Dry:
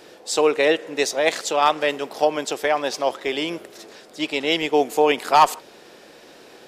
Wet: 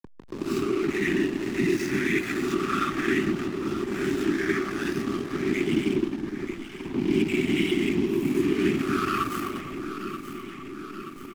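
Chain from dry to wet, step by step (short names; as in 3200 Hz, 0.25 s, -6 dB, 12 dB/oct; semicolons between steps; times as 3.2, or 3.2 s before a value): spectral swells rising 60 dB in 0.66 s; low-pass opened by the level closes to 1200 Hz, open at -13 dBFS; ten-band EQ 250 Hz +9 dB, 1000 Hz -5 dB, 4000 Hz -11 dB, 8000 Hz -8 dB; feedback echo 70 ms, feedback 59%, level -10 dB; plain phase-vocoder stretch 1.7×; compressor, threshold -20 dBFS, peak gain reduction 8 dB; whisperiser; brick-wall FIR band-stop 410–1100 Hz; backlash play -32 dBFS; high shelf 8500 Hz +4.5 dB; echo with dull and thin repeats by turns 0.465 s, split 1000 Hz, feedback 70%, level -11 dB; three-band squash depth 40%; gain +3 dB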